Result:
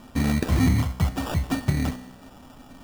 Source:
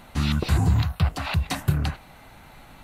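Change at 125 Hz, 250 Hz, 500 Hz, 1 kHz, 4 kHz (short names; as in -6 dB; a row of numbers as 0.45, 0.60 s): -1.5, +5.0, +2.0, -1.5, -4.0 dB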